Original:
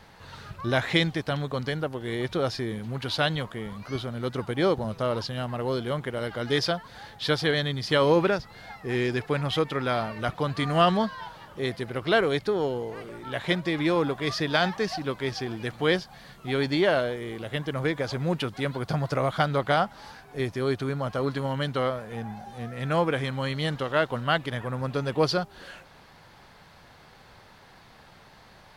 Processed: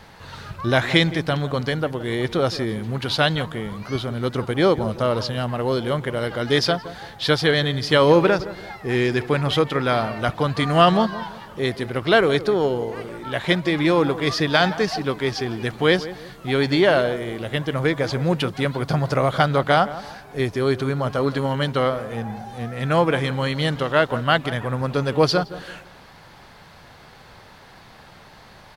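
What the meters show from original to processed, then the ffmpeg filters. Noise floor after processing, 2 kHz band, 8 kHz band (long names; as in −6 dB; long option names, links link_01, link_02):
−47 dBFS, +6.0 dB, +6.0 dB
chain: -filter_complex "[0:a]asplit=2[link_01][link_02];[link_02]adelay=168,lowpass=frequency=1300:poles=1,volume=-14dB,asplit=2[link_03][link_04];[link_04]adelay=168,lowpass=frequency=1300:poles=1,volume=0.36,asplit=2[link_05][link_06];[link_06]adelay=168,lowpass=frequency=1300:poles=1,volume=0.36[link_07];[link_01][link_03][link_05][link_07]amix=inputs=4:normalize=0,volume=6dB"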